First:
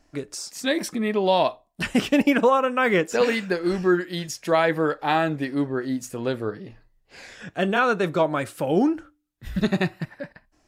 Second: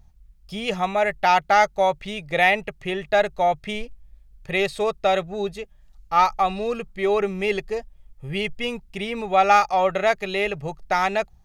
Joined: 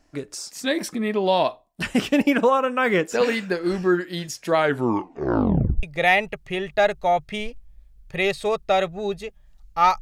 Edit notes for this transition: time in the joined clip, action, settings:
first
4.56 tape stop 1.27 s
5.83 switch to second from 2.18 s

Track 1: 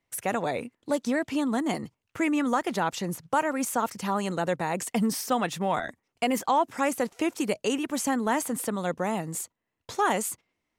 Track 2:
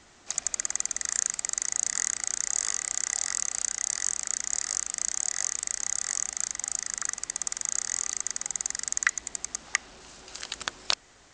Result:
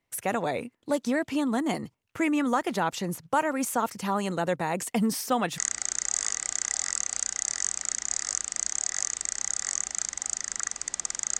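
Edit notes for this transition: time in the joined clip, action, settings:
track 1
5.58 switch to track 2 from 2 s

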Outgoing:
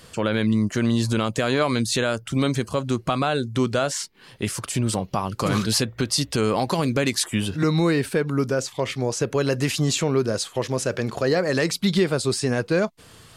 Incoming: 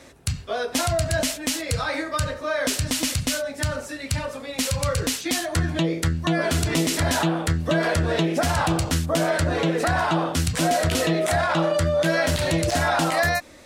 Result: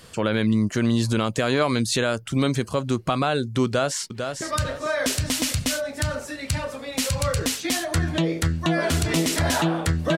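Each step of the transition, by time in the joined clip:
outgoing
3.65–4.42 echo throw 0.45 s, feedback 30%, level -6.5 dB
4.42 switch to incoming from 2.03 s

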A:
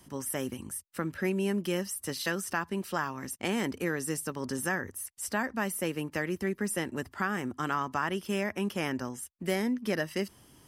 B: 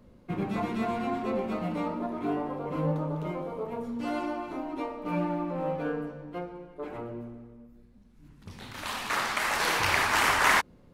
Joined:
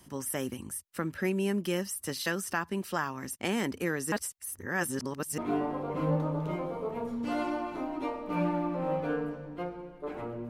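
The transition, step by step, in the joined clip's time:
A
4.12–5.38 reverse
5.38 switch to B from 2.14 s

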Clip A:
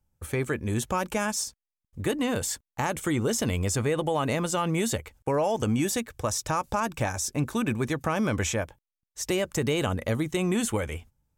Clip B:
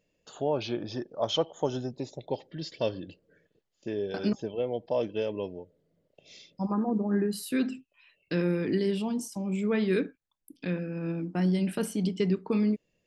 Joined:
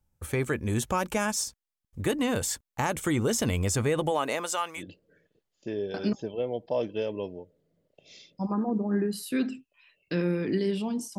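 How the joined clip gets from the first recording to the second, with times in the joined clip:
clip A
4.1–4.83 HPF 250 Hz -> 1200 Hz
4.79 switch to clip B from 2.99 s, crossfade 0.08 s

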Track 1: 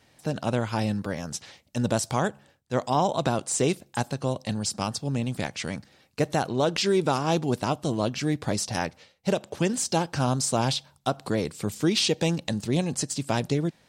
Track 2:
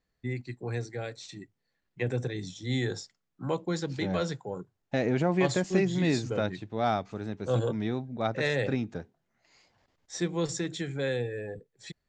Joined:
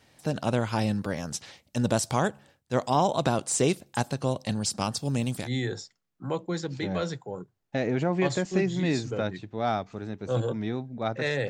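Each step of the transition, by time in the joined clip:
track 1
4.97–5.5 high shelf 6500 Hz +10.5 dB
5.42 switch to track 2 from 2.61 s, crossfade 0.16 s

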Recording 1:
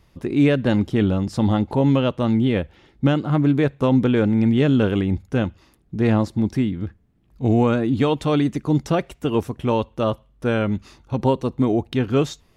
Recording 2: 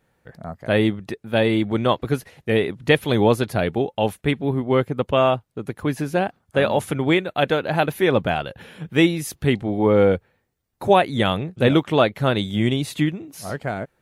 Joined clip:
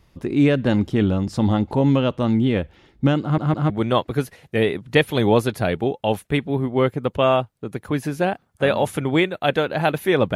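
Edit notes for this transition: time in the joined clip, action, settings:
recording 1
3.22 stutter in place 0.16 s, 3 plays
3.7 switch to recording 2 from 1.64 s

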